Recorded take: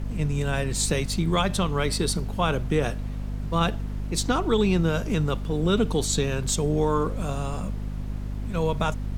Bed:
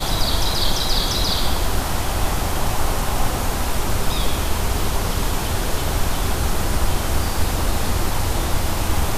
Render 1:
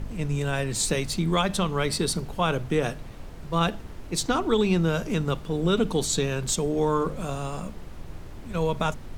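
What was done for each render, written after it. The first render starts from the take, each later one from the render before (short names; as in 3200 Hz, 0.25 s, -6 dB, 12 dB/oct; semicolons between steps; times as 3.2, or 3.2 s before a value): de-hum 50 Hz, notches 5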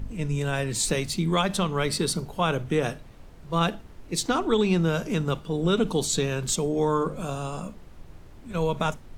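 noise print and reduce 7 dB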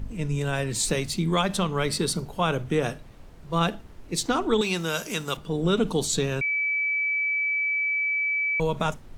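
4.61–5.37 tilt +3.5 dB/oct; 6.41–8.6 bleep 2300 Hz -22.5 dBFS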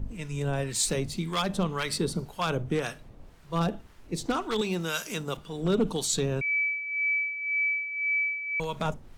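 wavefolder -15 dBFS; harmonic tremolo 1.9 Hz, depth 70%, crossover 920 Hz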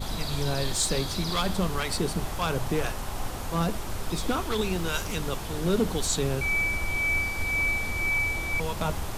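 add bed -12.5 dB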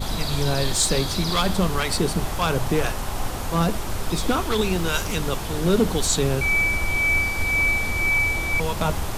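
gain +5.5 dB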